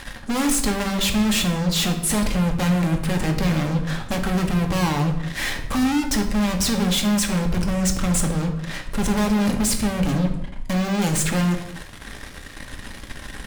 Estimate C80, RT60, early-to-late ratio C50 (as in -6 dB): 11.5 dB, no single decay rate, 8.5 dB